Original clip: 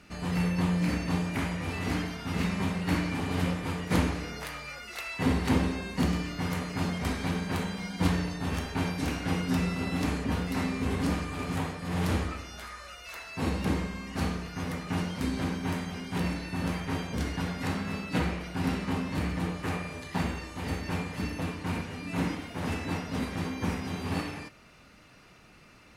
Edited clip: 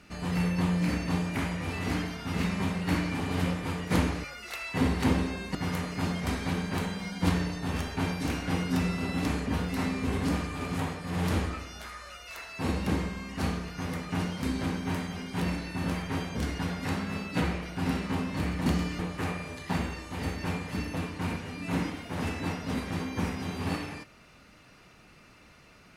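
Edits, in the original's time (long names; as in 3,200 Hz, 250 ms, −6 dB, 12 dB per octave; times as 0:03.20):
0:04.24–0:04.69: remove
0:06.00–0:06.33: move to 0:19.44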